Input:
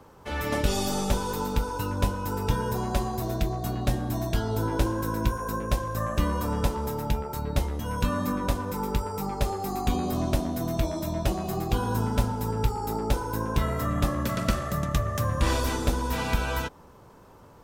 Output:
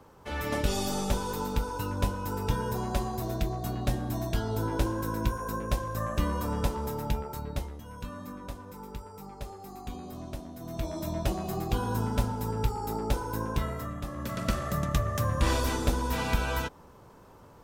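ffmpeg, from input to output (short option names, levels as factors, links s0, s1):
-af "volume=8.41,afade=t=out:st=7.17:d=0.68:silence=0.298538,afade=t=in:st=10.59:d=0.48:silence=0.298538,afade=t=out:st=13.45:d=0.58:silence=0.334965,afade=t=in:st=14.03:d=0.66:silence=0.281838"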